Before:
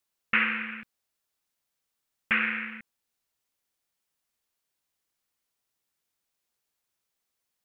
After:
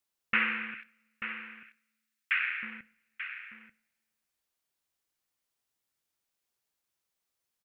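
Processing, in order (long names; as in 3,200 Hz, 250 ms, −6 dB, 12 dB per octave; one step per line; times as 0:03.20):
0:00.74–0:02.63: high-pass filter 1,400 Hz 24 dB per octave
single-tap delay 887 ms −10.5 dB
convolution reverb, pre-delay 3 ms, DRR 15.5 dB
level −3 dB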